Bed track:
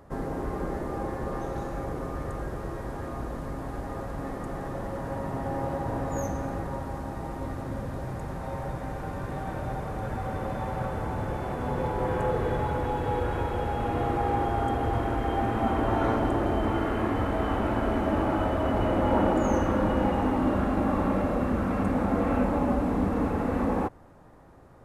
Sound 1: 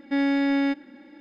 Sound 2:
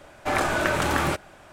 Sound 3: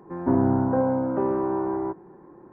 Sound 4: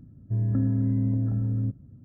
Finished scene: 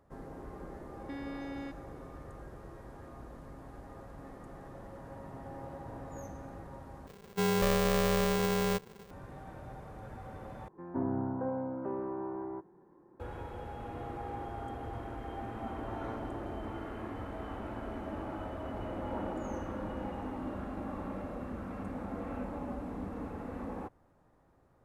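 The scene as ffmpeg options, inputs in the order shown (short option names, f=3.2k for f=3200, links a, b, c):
-filter_complex "[0:a]volume=-14dB[a];[1:a]acompressor=threshold=-25dB:ratio=6:attack=3.2:release=140:knee=1:detection=peak[b];[4:a]aeval=exprs='val(0)*sgn(sin(2*PI*300*n/s))':c=same[c];[a]asplit=3[d][e][f];[d]atrim=end=7.074[g];[c]atrim=end=2.04,asetpts=PTS-STARTPTS,volume=-4dB[h];[e]atrim=start=9.106:end=10.684[i];[3:a]atrim=end=2.52,asetpts=PTS-STARTPTS,volume=-12.5dB[j];[f]atrim=start=13.196[k];[b]atrim=end=1.2,asetpts=PTS-STARTPTS,volume=-13.5dB,afade=t=in:d=0.004:c=hsin,afade=t=out:st=1.196:d=0.004:c=hsin,adelay=980[l];[g][h]acrossfade=d=0.004:c1=hsin:c2=hsin[m];[m][i]acrossfade=d=0.004:c1=hsin:c2=hsin[n];[n][j]acrossfade=d=0.004:c1=hsin:c2=hsin[o];[o][k]acrossfade=d=0.004:c1=hsin:c2=hsin[p];[p][l]amix=inputs=2:normalize=0"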